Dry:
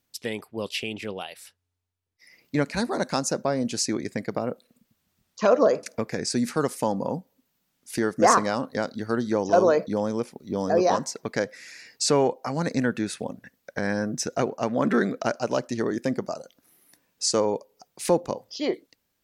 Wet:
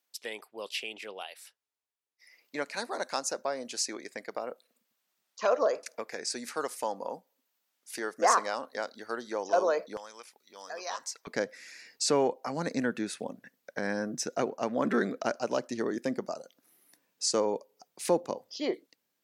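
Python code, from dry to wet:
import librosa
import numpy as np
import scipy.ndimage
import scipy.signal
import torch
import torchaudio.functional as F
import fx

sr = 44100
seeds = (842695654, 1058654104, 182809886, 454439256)

y = fx.highpass(x, sr, hz=fx.steps((0.0, 530.0), (9.97, 1400.0), (11.27, 200.0)), slope=12)
y = F.gain(torch.from_numpy(y), -4.5).numpy()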